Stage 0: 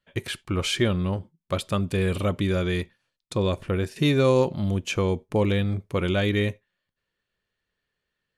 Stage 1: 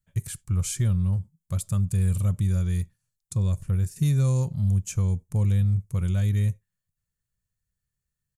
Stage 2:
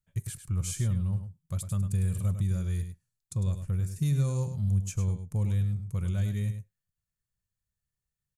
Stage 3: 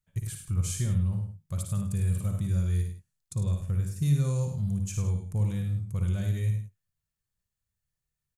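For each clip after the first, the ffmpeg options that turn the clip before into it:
ffmpeg -i in.wav -af "firequalizer=gain_entry='entry(130,0);entry(290,-23);entry(1200,-19);entry(3100,-23);entry(7000,0)':delay=0.05:min_phase=1,volume=5.5dB" out.wav
ffmpeg -i in.wav -af "aecho=1:1:103:0.335,volume=-5dB" out.wav
ffmpeg -i in.wav -af "aecho=1:1:56|76:0.473|0.299" out.wav

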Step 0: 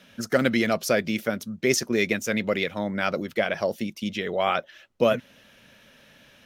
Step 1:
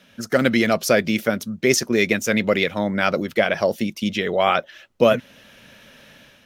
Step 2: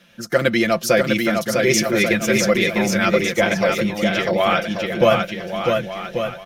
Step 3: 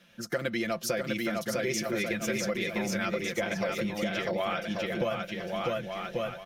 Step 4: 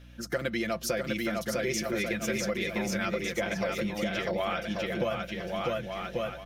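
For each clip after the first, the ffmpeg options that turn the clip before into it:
ffmpeg -i in.wav -af "dynaudnorm=framelen=130:gausssize=5:maxgain=6.5dB" out.wav
ffmpeg -i in.wav -af "asubboost=boost=3.5:cutoff=120,aecho=1:1:5.8:0.71,aecho=1:1:650|1138|1503|1777|1983:0.631|0.398|0.251|0.158|0.1,volume=-1dB" out.wav
ffmpeg -i in.wav -af "acompressor=threshold=-20dB:ratio=6,volume=-7dB" out.wav
ffmpeg -i in.wav -af "aeval=exprs='val(0)+0.00355*(sin(2*PI*60*n/s)+sin(2*PI*2*60*n/s)/2+sin(2*PI*3*60*n/s)/3+sin(2*PI*4*60*n/s)/4+sin(2*PI*5*60*n/s)/5)':channel_layout=same" out.wav

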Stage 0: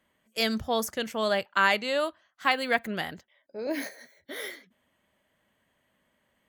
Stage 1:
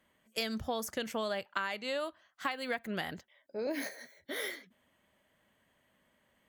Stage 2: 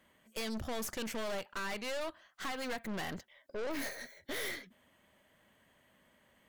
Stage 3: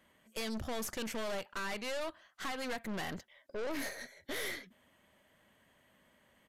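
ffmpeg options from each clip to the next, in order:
ffmpeg -i in.wav -af "acompressor=threshold=-31dB:ratio=16" out.wav
ffmpeg -i in.wav -af "aeval=exprs='(tanh(141*val(0)+0.6)-tanh(0.6))/141':channel_layout=same,volume=7dB" out.wav
ffmpeg -i in.wav -af "aresample=32000,aresample=44100" out.wav

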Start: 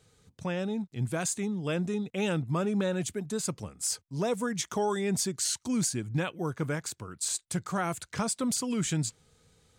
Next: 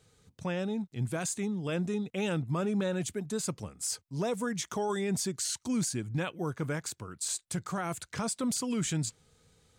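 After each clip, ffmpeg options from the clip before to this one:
ffmpeg -i in.wav -af "alimiter=limit=-22.5dB:level=0:latency=1:release=14,volume=-1dB" out.wav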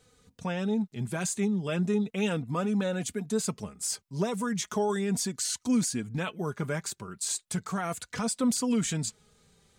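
ffmpeg -i in.wav -af "flanger=delay=4:depth=1.1:regen=28:speed=0.36:shape=sinusoidal,volume=6dB" out.wav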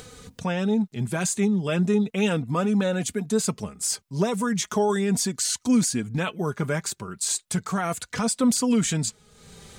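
ffmpeg -i in.wav -af "acompressor=mode=upward:threshold=-39dB:ratio=2.5,volume=5.5dB" out.wav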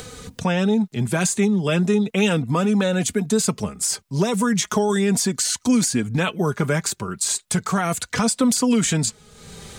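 ffmpeg -i in.wav -filter_complex "[0:a]acrossover=split=300|2200[link_01][link_02][link_03];[link_01]acompressor=threshold=-27dB:ratio=4[link_04];[link_02]acompressor=threshold=-28dB:ratio=4[link_05];[link_03]acompressor=threshold=-27dB:ratio=4[link_06];[link_04][link_05][link_06]amix=inputs=3:normalize=0,volume=7dB" out.wav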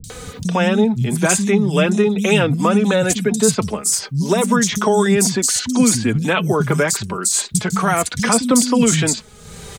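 ffmpeg -i in.wav -filter_complex "[0:a]acrossover=split=200|4400[link_01][link_02][link_03];[link_03]adelay=40[link_04];[link_02]adelay=100[link_05];[link_01][link_05][link_04]amix=inputs=3:normalize=0,volume=6dB" out.wav

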